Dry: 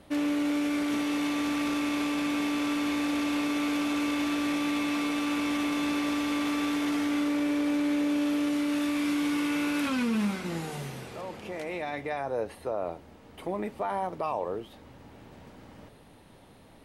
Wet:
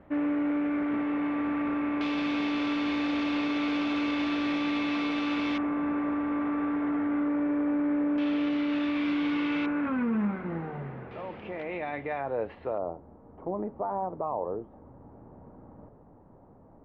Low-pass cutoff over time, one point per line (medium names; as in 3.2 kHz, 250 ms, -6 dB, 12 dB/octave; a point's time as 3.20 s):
low-pass 24 dB/octave
2 kHz
from 2.01 s 4.4 kHz
from 5.58 s 1.7 kHz
from 8.18 s 3.6 kHz
from 9.66 s 1.8 kHz
from 11.11 s 2.9 kHz
from 12.78 s 1.1 kHz